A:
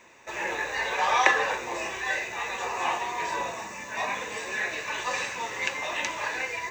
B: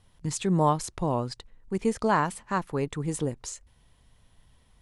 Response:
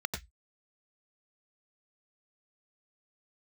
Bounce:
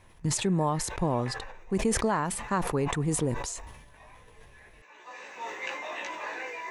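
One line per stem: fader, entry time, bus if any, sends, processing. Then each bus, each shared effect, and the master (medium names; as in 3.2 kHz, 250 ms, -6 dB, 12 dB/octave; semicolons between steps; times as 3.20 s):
-0.5 dB, 0.00 s, no send, Chebyshev high-pass 300 Hz, order 2; chorus 0.83 Hz, delay 16 ms, depth 2.4 ms; auto duck -19 dB, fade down 0.40 s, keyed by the second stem
+2.5 dB, 0.00 s, no send, treble shelf 5.7 kHz +11.5 dB; compression 6:1, threshold -25 dBFS, peak gain reduction 8 dB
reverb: none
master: treble shelf 3.3 kHz -10 dB; decay stretcher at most 47 dB/s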